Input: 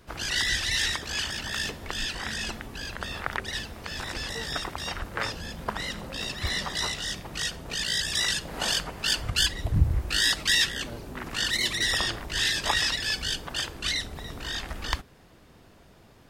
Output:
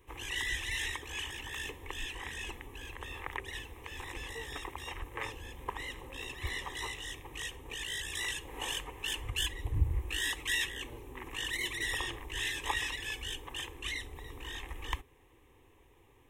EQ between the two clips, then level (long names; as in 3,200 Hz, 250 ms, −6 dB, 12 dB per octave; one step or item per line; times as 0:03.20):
phaser with its sweep stopped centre 960 Hz, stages 8
−5.0 dB